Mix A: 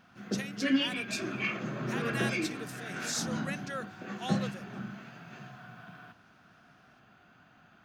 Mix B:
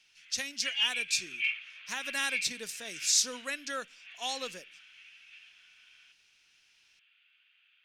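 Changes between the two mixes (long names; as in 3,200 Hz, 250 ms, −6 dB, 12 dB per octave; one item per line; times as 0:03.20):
background: add flat-topped band-pass 2,700 Hz, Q 2.4
master: add parametric band 6,200 Hz +10 dB 2.4 octaves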